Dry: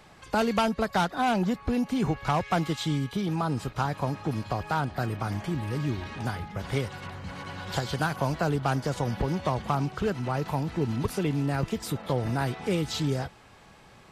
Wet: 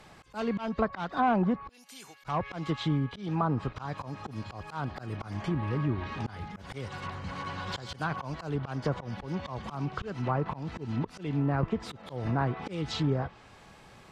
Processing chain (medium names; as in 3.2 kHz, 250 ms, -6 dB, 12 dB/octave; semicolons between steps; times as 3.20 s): 1.69–2.24 s: differentiator; slow attack 213 ms; dynamic bell 1.1 kHz, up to +7 dB, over -56 dBFS, Q 7.5; low-pass that closes with the level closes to 1.6 kHz, closed at -24.5 dBFS